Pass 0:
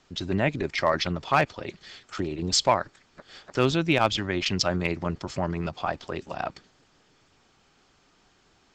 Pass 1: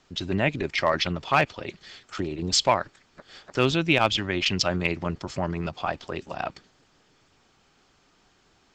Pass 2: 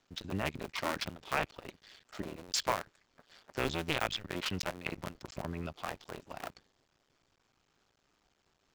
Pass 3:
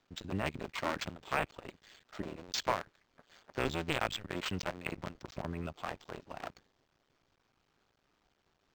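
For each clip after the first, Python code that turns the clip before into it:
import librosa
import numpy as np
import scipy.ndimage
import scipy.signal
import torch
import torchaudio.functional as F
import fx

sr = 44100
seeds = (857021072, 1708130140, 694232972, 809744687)

y1 = fx.dynamic_eq(x, sr, hz=2800.0, q=1.9, threshold_db=-44.0, ratio=4.0, max_db=5)
y2 = fx.cycle_switch(y1, sr, every=2, mode='muted')
y2 = F.gain(torch.from_numpy(y2), -9.0).numpy()
y3 = np.interp(np.arange(len(y2)), np.arange(len(y2))[::4], y2[::4])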